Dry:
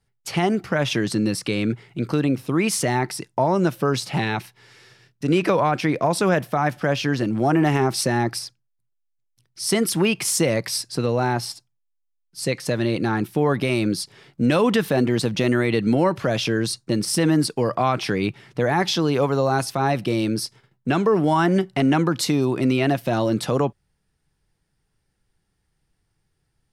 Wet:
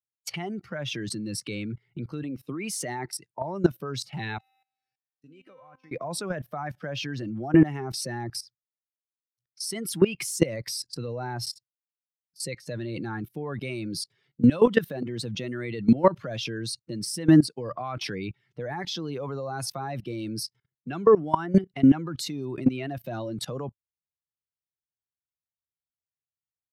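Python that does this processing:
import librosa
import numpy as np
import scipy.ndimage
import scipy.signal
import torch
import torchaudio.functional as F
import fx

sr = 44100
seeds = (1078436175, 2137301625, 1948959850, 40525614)

y = fx.highpass(x, sr, hz=140.0, slope=12, at=(2.23, 3.15))
y = fx.comb_fb(y, sr, f0_hz=260.0, decay_s=1.3, harmonics='all', damping=0.0, mix_pct=90, at=(4.37, 5.91), fade=0.02)
y = fx.bin_expand(y, sr, power=1.5)
y = scipy.signal.sosfilt(scipy.signal.butter(4, 94.0, 'highpass', fs=sr, output='sos'), y)
y = fx.level_steps(y, sr, step_db=19)
y = F.gain(torch.from_numpy(y), 5.5).numpy()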